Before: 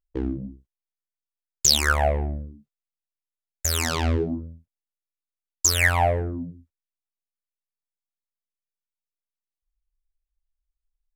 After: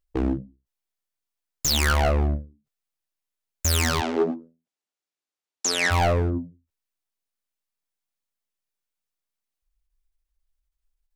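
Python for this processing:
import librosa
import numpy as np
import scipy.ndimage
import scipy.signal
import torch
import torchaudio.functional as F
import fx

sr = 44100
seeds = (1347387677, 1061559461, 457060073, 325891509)

y = np.clip(10.0 ** (24.0 / 20.0) * x, -1.0, 1.0) / 10.0 ** (24.0 / 20.0)
y = fx.cabinet(y, sr, low_hz=210.0, low_slope=24, high_hz=9500.0, hz=(400.0, 760.0, 8900.0), db=(4, 3, -4), at=(4.0, 5.9), fade=0.02)
y = fx.end_taper(y, sr, db_per_s=180.0)
y = y * 10.0 ** (5.5 / 20.0)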